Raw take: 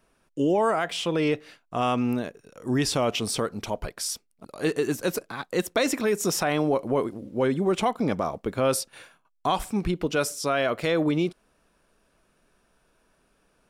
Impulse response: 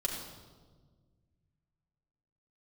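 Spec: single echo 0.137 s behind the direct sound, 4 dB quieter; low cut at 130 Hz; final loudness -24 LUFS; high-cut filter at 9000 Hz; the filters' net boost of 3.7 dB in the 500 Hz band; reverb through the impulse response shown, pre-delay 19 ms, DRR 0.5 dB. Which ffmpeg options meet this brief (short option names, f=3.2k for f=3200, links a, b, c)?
-filter_complex "[0:a]highpass=130,lowpass=9k,equalizer=f=500:t=o:g=4.5,aecho=1:1:137:0.631,asplit=2[a][b];[1:a]atrim=start_sample=2205,adelay=19[c];[b][c]afir=irnorm=-1:irlink=0,volume=-4.5dB[d];[a][d]amix=inputs=2:normalize=0,volume=-4.5dB"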